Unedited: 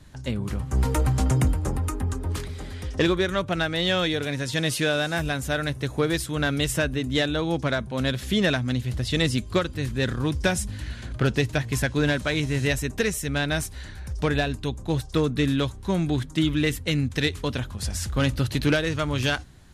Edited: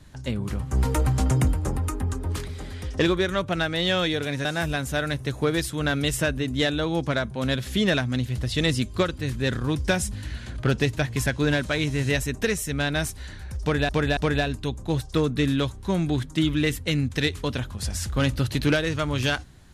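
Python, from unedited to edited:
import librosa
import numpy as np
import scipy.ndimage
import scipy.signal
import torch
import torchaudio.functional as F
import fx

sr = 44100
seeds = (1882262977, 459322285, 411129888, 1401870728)

y = fx.edit(x, sr, fx.cut(start_s=4.45, length_s=0.56),
    fx.repeat(start_s=14.17, length_s=0.28, count=3), tone=tone)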